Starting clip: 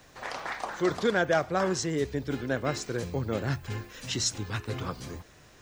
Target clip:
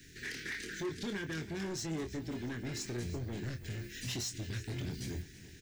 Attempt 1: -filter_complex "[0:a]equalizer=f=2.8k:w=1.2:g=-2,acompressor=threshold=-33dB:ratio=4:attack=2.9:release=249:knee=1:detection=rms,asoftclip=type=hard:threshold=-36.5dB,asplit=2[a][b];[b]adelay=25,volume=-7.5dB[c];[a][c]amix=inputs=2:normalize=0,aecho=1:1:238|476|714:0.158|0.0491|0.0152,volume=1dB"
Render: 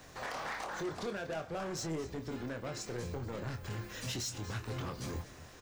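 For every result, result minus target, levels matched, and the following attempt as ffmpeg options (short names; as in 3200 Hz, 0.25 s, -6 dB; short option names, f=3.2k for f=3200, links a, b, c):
1000 Hz band +10.0 dB; echo 94 ms early
-filter_complex "[0:a]asuperstop=centerf=820:order=12:qfactor=0.69,equalizer=f=2.8k:w=1.2:g=-2,acompressor=threshold=-33dB:ratio=4:attack=2.9:release=249:knee=1:detection=rms,asoftclip=type=hard:threshold=-36.5dB,asplit=2[a][b];[b]adelay=25,volume=-7.5dB[c];[a][c]amix=inputs=2:normalize=0,aecho=1:1:238|476|714:0.158|0.0491|0.0152,volume=1dB"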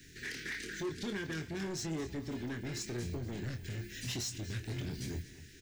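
echo 94 ms early
-filter_complex "[0:a]asuperstop=centerf=820:order=12:qfactor=0.69,equalizer=f=2.8k:w=1.2:g=-2,acompressor=threshold=-33dB:ratio=4:attack=2.9:release=249:knee=1:detection=rms,asoftclip=type=hard:threshold=-36.5dB,asplit=2[a][b];[b]adelay=25,volume=-7.5dB[c];[a][c]amix=inputs=2:normalize=0,aecho=1:1:332|664|996:0.158|0.0491|0.0152,volume=1dB"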